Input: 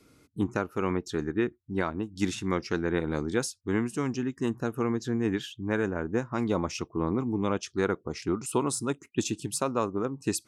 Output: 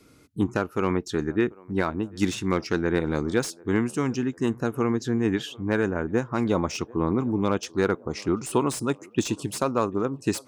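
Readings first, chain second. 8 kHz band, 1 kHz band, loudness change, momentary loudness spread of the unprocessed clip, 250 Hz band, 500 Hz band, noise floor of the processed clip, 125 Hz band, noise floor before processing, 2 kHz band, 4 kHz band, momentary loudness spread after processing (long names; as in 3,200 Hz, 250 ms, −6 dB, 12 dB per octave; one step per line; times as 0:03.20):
0.0 dB, +4.0 dB, +4.0 dB, 3 LU, +4.0 dB, +4.0 dB, −53 dBFS, +4.0 dB, −65 dBFS, +3.5 dB, +3.0 dB, 3 LU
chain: feedback echo with a band-pass in the loop 740 ms, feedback 65%, band-pass 600 Hz, level −22.5 dB
slew-rate limiting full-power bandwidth 130 Hz
level +4 dB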